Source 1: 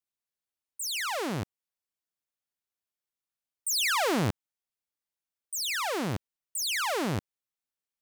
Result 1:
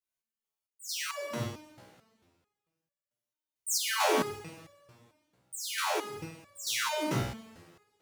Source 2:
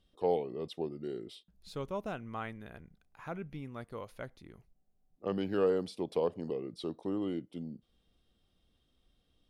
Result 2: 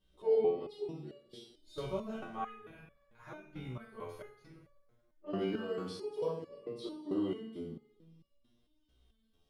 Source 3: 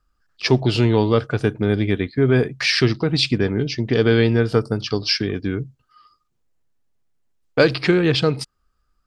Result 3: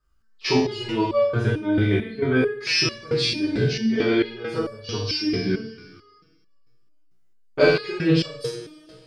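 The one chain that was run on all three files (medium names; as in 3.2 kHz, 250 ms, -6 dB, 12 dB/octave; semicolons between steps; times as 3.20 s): flutter echo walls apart 8.4 m, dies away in 0.45 s; two-slope reverb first 0.33 s, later 1.9 s, from -18 dB, DRR -6.5 dB; resonator arpeggio 4.5 Hz 63–570 Hz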